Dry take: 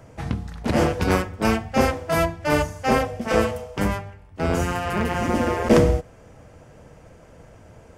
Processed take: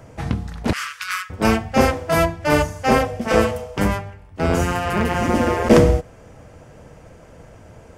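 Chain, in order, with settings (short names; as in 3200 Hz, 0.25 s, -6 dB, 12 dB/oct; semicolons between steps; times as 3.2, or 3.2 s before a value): 0.73–1.3 elliptic high-pass 1200 Hz, stop band 40 dB; gain +3.5 dB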